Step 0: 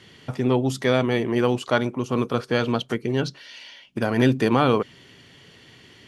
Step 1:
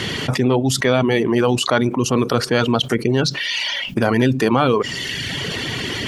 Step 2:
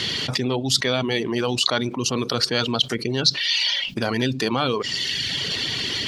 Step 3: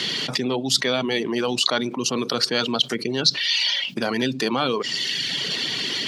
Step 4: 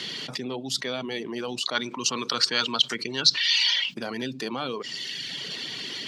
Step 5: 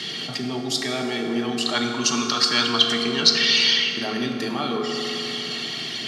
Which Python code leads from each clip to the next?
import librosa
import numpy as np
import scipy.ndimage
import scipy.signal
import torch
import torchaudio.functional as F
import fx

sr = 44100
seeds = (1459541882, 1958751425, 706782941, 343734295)

y1 = fx.dereverb_blind(x, sr, rt60_s=0.79)
y1 = fx.env_flatten(y1, sr, amount_pct=70)
y1 = y1 * 10.0 ** (2.0 / 20.0)
y2 = fx.peak_eq(y1, sr, hz=4300.0, db=13.5, octaves=1.2)
y2 = y2 * 10.0 ** (-7.5 / 20.0)
y3 = scipy.signal.sosfilt(scipy.signal.butter(4, 150.0, 'highpass', fs=sr, output='sos'), y2)
y4 = fx.spec_box(y3, sr, start_s=1.75, length_s=2.19, low_hz=860.0, high_hz=8700.0, gain_db=8)
y4 = y4 * 10.0 ** (-8.5 / 20.0)
y5 = fx.notch_comb(y4, sr, f0_hz=500.0)
y5 = fx.rev_fdn(y5, sr, rt60_s=3.7, lf_ratio=1.0, hf_ratio=0.45, size_ms=13.0, drr_db=0.0)
y5 = y5 * 10.0 ** (4.0 / 20.0)